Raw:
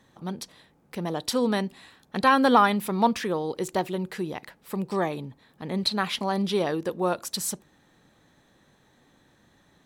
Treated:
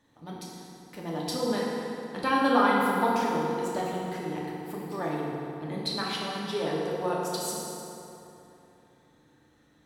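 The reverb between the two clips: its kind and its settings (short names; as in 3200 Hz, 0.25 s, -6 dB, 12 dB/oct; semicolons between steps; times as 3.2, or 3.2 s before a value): FDN reverb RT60 3.1 s, high-frequency decay 0.6×, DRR -5 dB; gain -9 dB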